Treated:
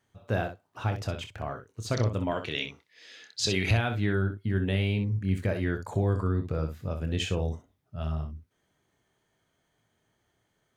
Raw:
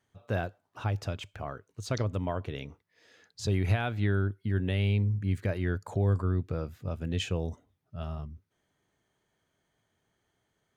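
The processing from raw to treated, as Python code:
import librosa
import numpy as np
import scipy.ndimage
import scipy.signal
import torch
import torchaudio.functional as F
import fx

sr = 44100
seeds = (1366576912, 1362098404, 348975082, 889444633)

y = fx.weighting(x, sr, curve='D', at=(2.31, 3.71))
y = fx.room_early_taps(y, sr, ms=(26, 63), db=(-9.5, -9.0))
y = y * librosa.db_to_amplitude(2.0)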